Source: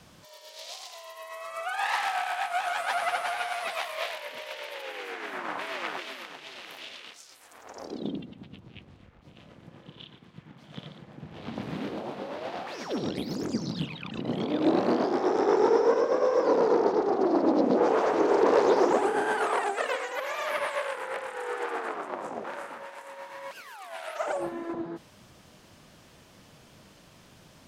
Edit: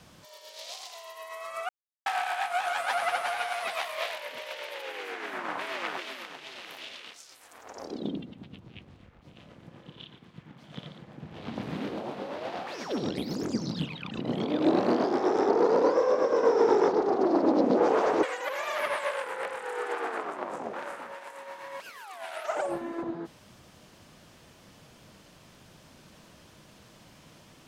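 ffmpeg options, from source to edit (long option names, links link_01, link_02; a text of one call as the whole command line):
ffmpeg -i in.wav -filter_complex "[0:a]asplit=6[link_01][link_02][link_03][link_04][link_05][link_06];[link_01]atrim=end=1.69,asetpts=PTS-STARTPTS,afade=type=out:start_time=1.686:duration=0.004:curve=hsin[link_07];[link_02]atrim=start=1.69:end=2.06,asetpts=PTS-STARTPTS,volume=0[link_08];[link_03]atrim=start=2.06:end=15.492,asetpts=PTS-STARTPTS,afade=type=in:duration=0.004:curve=hsin[link_09];[link_04]atrim=start=15.488:end=16.882,asetpts=PTS-STARTPTS,areverse[link_10];[link_05]atrim=start=16.878:end=18.232[link_11];[link_06]atrim=start=19.938[link_12];[link_07][link_08][link_09]concat=n=3:v=0:a=1[link_13];[link_13][link_10]acrossfade=duration=0.004:curve1=hsin:curve2=hsin[link_14];[link_14][link_11]acrossfade=duration=0.004:curve1=hsin:curve2=hsin[link_15];[link_15][link_12]acrossfade=duration=0.004:curve1=hsin:curve2=hsin" out.wav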